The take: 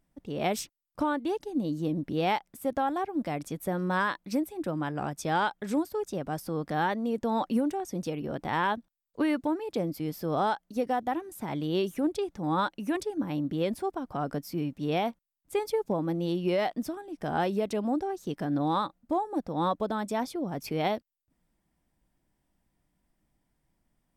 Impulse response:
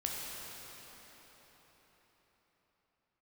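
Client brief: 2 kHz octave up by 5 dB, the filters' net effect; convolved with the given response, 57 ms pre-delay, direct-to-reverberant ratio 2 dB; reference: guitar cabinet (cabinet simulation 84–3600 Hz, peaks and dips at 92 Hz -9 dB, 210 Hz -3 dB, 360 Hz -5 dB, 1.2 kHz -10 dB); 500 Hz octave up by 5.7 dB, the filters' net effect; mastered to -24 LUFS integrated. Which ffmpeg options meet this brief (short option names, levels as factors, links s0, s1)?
-filter_complex "[0:a]equalizer=f=500:t=o:g=8.5,equalizer=f=2000:t=o:g=8,asplit=2[s0][s1];[1:a]atrim=start_sample=2205,adelay=57[s2];[s1][s2]afir=irnorm=-1:irlink=0,volume=0.531[s3];[s0][s3]amix=inputs=2:normalize=0,highpass=84,equalizer=f=92:t=q:w=4:g=-9,equalizer=f=210:t=q:w=4:g=-3,equalizer=f=360:t=q:w=4:g=-5,equalizer=f=1200:t=q:w=4:g=-10,lowpass=f=3600:w=0.5412,lowpass=f=3600:w=1.3066,volume=1.26"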